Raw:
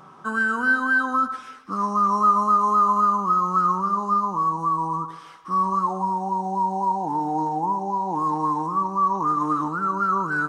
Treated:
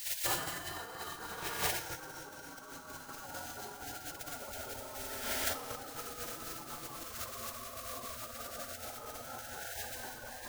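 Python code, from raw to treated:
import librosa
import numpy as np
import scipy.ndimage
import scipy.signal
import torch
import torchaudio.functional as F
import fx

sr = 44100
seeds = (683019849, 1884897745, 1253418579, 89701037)

p1 = fx.quant_dither(x, sr, seeds[0], bits=6, dither='triangular')
p2 = x + F.gain(torch.from_numpy(p1), -10.0).numpy()
p3 = scipy.signal.sosfilt(scipy.signal.butter(2, 56.0, 'highpass', fs=sr, output='sos'), p2)
p4 = fx.low_shelf(p3, sr, hz=480.0, db=9.0)
p5 = fx.hum_notches(p4, sr, base_hz=50, count=8)
p6 = fx.rev_schroeder(p5, sr, rt60_s=3.6, comb_ms=31, drr_db=-4.0)
p7 = fx.tremolo_shape(p6, sr, shape='saw_up', hz=4.2, depth_pct=30)
p8 = fx.over_compress(p7, sr, threshold_db=-25.0, ratio=-1.0)
p9 = fx.spec_gate(p8, sr, threshold_db=-25, keep='weak')
y = F.gain(torch.from_numpy(p9), 3.5).numpy()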